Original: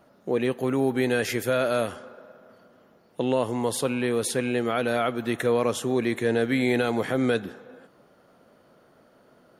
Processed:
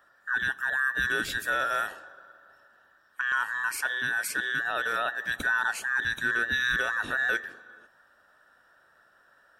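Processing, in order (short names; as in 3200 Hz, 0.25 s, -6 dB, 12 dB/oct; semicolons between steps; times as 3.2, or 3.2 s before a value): band inversion scrambler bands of 2000 Hz; 3.76–5.37 HPF 130 Hz 6 dB/oct; gain -4 dB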